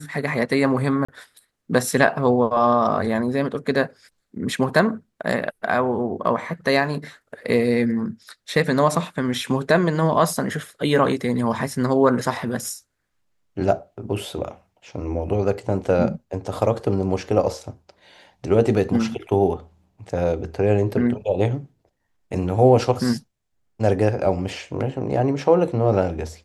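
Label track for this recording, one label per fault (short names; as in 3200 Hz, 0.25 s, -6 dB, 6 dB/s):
1.050000	1.080000	gap 35 ms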